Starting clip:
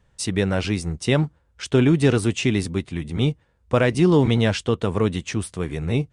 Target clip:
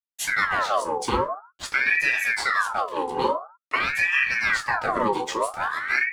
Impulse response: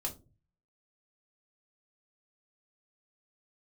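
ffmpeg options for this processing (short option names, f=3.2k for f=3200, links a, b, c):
-filter_complex "[0:a]acompressor=threshold=-21dB:ratio=6,aeval=exprs='sgn(val(0))*max(abs(val(0))-0.00398,0)':c=same,afreqshift=46[a];[1:a]atrim=start_sample=2205,afade=t=out:st=0.29:d=0.01,atrim=end_sample=13230[b];[a][b]afir=irnorm=-1:irlink=0,aeval=exprs='val(0)*sin(2*PI*1400*n/s+1400*0.55/0.48*sin(2*PI*0.48*n/s))':c=same,volume=3dB"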